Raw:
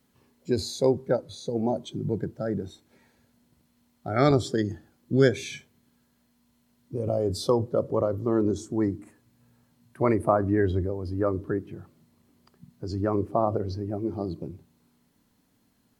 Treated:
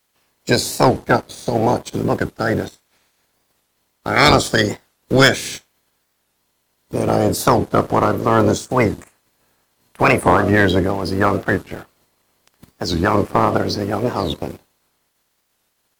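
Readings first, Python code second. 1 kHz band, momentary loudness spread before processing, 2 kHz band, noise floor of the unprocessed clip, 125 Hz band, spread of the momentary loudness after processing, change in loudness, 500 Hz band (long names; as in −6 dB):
+14.5 dB, 16 LU, +19.5 dB, −68 dBFS, +8.0 dB, 15 LU, +9.5 dB, +7.5 dB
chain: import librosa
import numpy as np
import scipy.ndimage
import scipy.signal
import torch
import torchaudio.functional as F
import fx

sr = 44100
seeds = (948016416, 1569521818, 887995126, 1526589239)

y = fx.spec_clip(x, sr, under_db=23)
y = fx.leveller(y, sr, passes=2)
y = fx.record_warp(y, sr, rpm=45.0, depth_cents=250.0)
y = F.gain(torch.from_numpy(y), 3.5).numpy()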